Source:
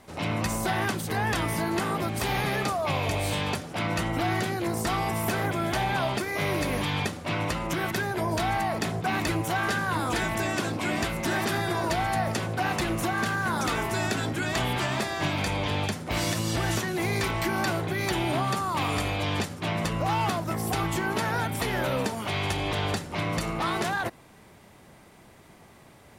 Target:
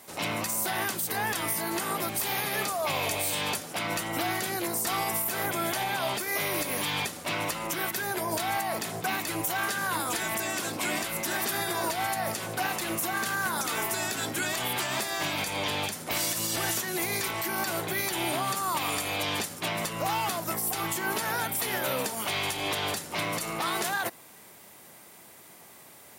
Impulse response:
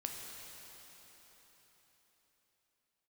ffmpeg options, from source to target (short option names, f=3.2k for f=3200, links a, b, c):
-af "highpass=58,aemphasis=mode=production:type=bsi,alimiter=limit=-18.5dB:level=0:latency=1:release=146"